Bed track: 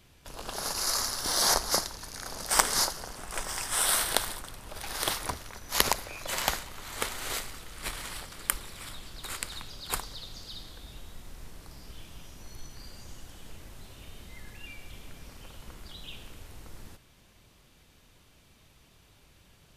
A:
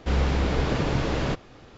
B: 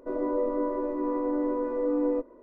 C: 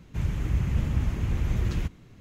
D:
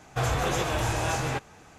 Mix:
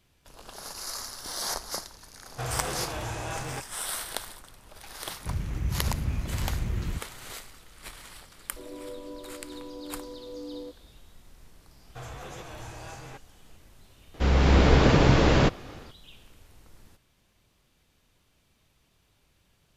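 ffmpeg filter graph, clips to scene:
-filter_complex "[4:a]asplit=2[s0][s1];[0:a]volume=0.422[s2];[2:a]lowpass=1000[s3];[1:a]dynaudnorm=f=200:g=3:m=2[s4];[s0]atrim=end=1.78,asetpts=PTS-STARTPTS,volume=0.447,afade=t=in:d=0.004:c=hsin,afade=t=out:st=1.776:d=0.004:c=hsin,adelay=2220[s5];[3:a]atrim=end=2.2,asetpts=PTS-STARTPTS,volume=0.631,afade=t=in:d=0.004:c=hsin,afade=t=out:st=2.196:d=0.004:c=hsin,adelay=5110[s6];[s3]atrim=end=2.42,asetpts=PTS-STARTPTS,volume=0.224,afade=t=in:d=0.004:c=hsin,afade=t=out:st=2.416:d=0.004:c=hsin,adelay=374850S[s7];[s1]atrim=end=1.78,asetpts=PTS-STARTPTS,volume=0.178,afade=t=in:d=0.004:c=hsin,afade=t=out:st=1.776:d=0.004:c=hsin,adelay=11790[s8];[s4]atrim=end=1.77,asetpts=PTS-STARTPTS,afade=t=in:d=0.004:c=hsin,afade=t=out:st=1.766:d=0.004:c=hsin,adelay=14140[s9];[s2][s5][s6][s7][s8][s9]amix=inputs=6:normalize=0"

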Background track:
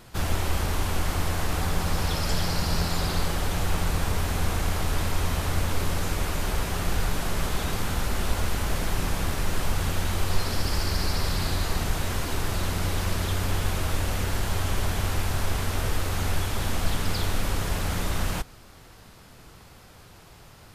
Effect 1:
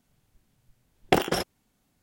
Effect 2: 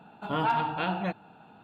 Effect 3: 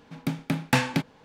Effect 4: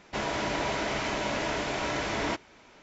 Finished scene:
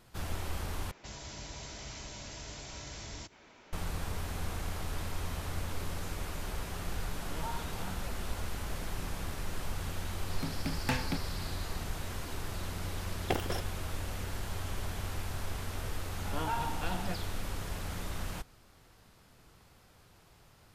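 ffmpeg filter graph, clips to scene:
-filter_complex "[2:a]asplit=2[s0][s1];[0:a]volume=0.282[s2];[4:a]acrossover=split=120|4600[s3][s4][s5];[s4]acompressor=threshold=0.00562:ratio=6:attack=0.48:release=105:knee=2.83:detection=peak[s6];[s3][s6][s5]amix=inputs=3:normalize=0[s7];[s0]asplit=2[s8][s9];[s9]afreqshift=2.9[s10];[s8][s10]amix=inputs=2:normalize=1[s11];[s2]asplit=2[s12][s13];[s12]atrim=end=0.914[s14];[s7]atrim=end=2.82,asetpts=PTS-STARTPTS,volume=0.75[s15];[s13]atrim=start=3.726[s16];[s11]atrim=end=1.63,asetpts=PTS-STARTPTS,volume=0.188,afade=t=in:d=0.004:c=hsin,afade=t=out:st=1.626:d=0.004:c=hsin,adelay=6990[s17];[3:a]atrim=end=1.24,asetpts=PTS-STARTPTS,volume=0.299,afade=t=in:d=0.004:c=hsin,afade=t=out:st=1.236:d=0.004:c=hsin,adelay=10160[s18];[1:a]atrim=end=2.02,asetpts=PTS-STARTPTS,volume=0.282,afade=t=in:d=0.004:c=hsin,afade=t=out:st=2.016:d=0.004:c=hsin,adelay=12180[s19];[s1]atrim=end=1.63,asetpts=PTS-STARTPTS,volume=0.376,afade=t=in:d=0.004:c=hsin,afade=t=out:st=1.626:d=0.004:c=hsin,adelay=16030[s20];[s14][s15]acrossfade=d=0.004:c1=hsin:c2=hsin[s21];[s21][s16]acrossfade=d=0.004:c1=hsin:c2=hsin[s22];[s22][s17][s18][s19][s20]amix=inputs=5:normalize=0"

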